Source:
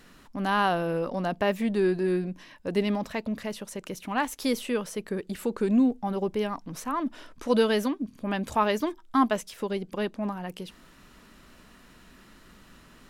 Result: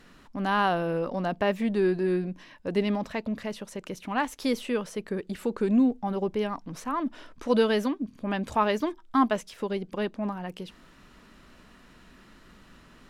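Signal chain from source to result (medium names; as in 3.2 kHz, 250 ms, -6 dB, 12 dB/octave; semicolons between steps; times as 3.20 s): treble shelf 8.5 kHz -10.5 dB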